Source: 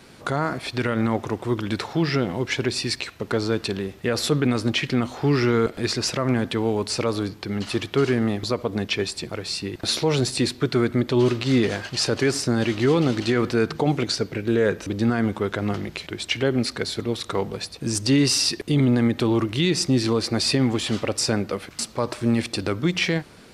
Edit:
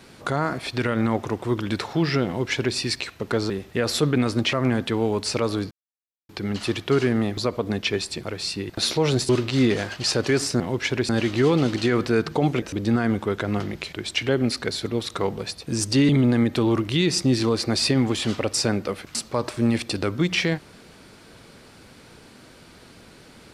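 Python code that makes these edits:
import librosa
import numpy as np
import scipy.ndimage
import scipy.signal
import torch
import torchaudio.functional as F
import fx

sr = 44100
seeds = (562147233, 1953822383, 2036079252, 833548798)

y = fx.edit(x, sr, fx.duplicate(start_s=2.27, length_s=0.49, to_s=12.53),
    fx.cut(start_s=3.5, length_s=0.29),
    fx.cut(start_s=4.81, length_s=1.35),
    fx.insert_silence(at_s=7.35, length_s=0.58),
    fx.cut(start_s=10.35, length_s=0.87),
    fx.cut(start_s=14.06, length_s=0.7),
    fx.cut(start_s=18.23, length_s=0.5), tone=tone)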